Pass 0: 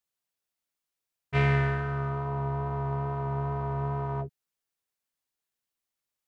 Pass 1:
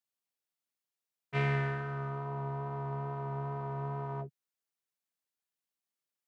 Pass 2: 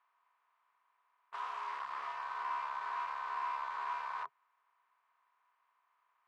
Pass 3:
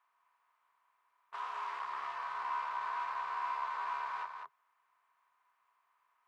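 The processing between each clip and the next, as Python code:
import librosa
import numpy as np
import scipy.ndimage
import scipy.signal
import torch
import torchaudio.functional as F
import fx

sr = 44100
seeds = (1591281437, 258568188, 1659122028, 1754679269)

y1 = scipy.signal.sosfilt(scipy.signal.butter(4, 120.0, 'highpass', fs=sr, output='sos'), x)
y1 = y1 * 10.0 ** (-5.5 / 20.0)
y2 = fx.bin_compress(y1, sr, power=0.6)
y2 = (np.mod(10.0 ** (32.0 / 20.0) * y2 + 1.0, 2.0) - 1.0) / 10.0 ** (32.0 / 20.0)
y2 = fx.ladder_bandpass(y2, sr, hz=1100.0, resonance_pct=80)
y2 = y2 * 10.0 ** (5.5 / 20.0)
y3 = y2 + 10.0 ** (-6.0 / 20.0) * np.pad(y2, (int(201 * sr / 1000.0), 0))[:len(y2)]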